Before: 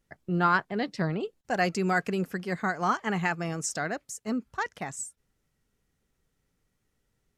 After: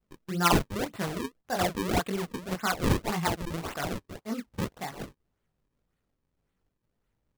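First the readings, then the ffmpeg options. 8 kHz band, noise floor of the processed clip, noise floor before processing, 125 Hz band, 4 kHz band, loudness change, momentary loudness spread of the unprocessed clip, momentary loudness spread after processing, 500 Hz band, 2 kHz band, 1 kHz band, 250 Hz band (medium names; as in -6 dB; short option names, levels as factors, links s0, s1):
-1.0 dB, -81 dBFS, -77 dBFS, +1.0 dB, +6.0 dB, -1.0 dB, 10 LU, 12 LU, -0.5 dB, -5.0 dB, -2.0 dB, -0.5 dB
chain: -af "adynamicequalizer=threshold=0.0112:dfrequency=1100:dqfactor=1.2:tfrequency=1100:tqfactor=1.2:attack=5:release=100:ratio=0.375:range=3:mode=boostabove:tftype=bell,flanger=delay=17.5:depth=4.5:speed=2.2,acrusher=samples=36:mix=1:aa=0.000001:lfo=1:lforange=57.6:lforate=1.8"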